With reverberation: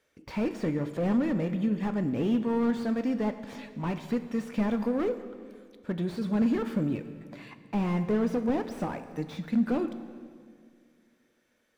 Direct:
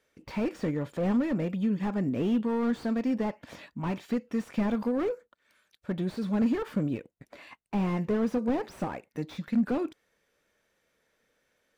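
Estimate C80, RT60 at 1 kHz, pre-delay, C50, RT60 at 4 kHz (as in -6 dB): 12.0 dB, 1.9 s, 5 ms, 11.5 dB, 1.8 s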